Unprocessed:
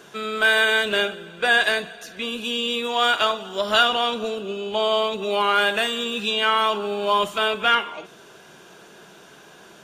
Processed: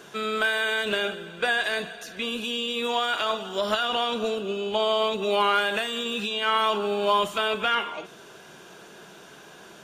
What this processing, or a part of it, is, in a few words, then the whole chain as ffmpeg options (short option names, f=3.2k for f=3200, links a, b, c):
de-esser from a sidechain: -filter_complex "[0:a]asplit=2[a][b];[b]highpass=6.2k,apad=whole_len=433866[c];[a][c]sidechaincompress=threshold=-39dB:ratio=8:attack=4.9:release=67"